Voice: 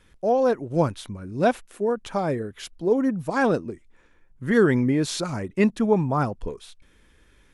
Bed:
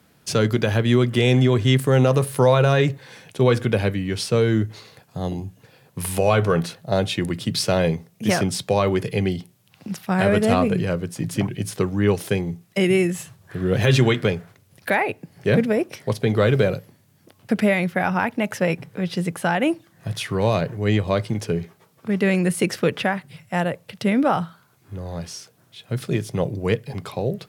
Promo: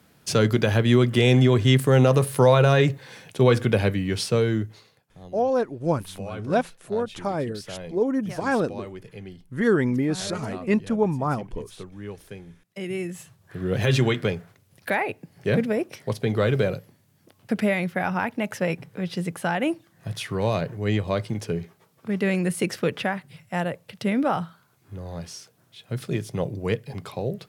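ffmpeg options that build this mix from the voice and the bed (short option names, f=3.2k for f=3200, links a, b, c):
-filter_complex "[0:a]adelay=5100,volume=-2dB[a];[1:a]volume=13.5dB,afade=t=out:st=4.17:d=0.85:silence=0.133352,afade=t=in:st=12.64:d=1.17:silence=0.199526[b];[a][b]amix=inputs=2:normalize=0"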